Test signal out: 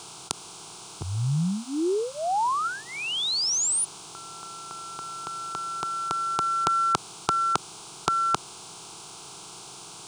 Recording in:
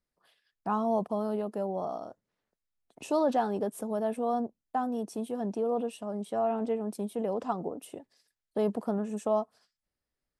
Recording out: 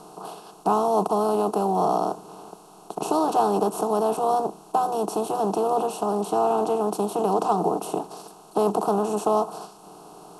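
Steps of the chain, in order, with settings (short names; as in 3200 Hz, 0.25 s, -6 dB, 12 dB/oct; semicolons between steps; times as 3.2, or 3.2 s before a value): per-bin compression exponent 0.4; fixed phaser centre 370 Hz, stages 8; gain +6 dB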